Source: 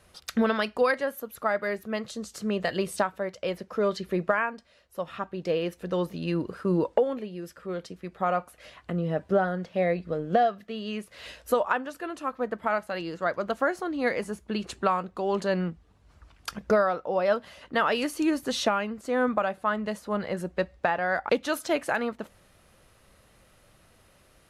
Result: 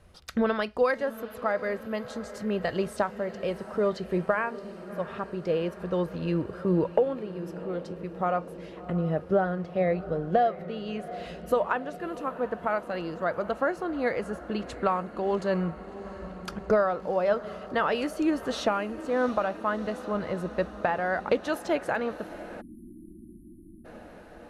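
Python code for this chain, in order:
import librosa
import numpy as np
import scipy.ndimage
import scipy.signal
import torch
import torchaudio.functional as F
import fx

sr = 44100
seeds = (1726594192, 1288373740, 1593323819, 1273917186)

y = fx.tilt_eq(x, sr, slope=-2.0)
y = fx.echo_diffused(y, sr, ms=703, feedback_pct=70, wet_db=-15.5)
y = fx.spec_erase(y, sr, start_s=22.61, length_s=1.24, low_hz=380.0, high_hz=8800.0)
y = fx.dynamic_eq(y, sr, hz=230.0, q=1.7, threshold_db=-37.0, ratio=4.0, max_db=-5)
y = F.gain(torch.from_numpy(y), -1.5).numpy()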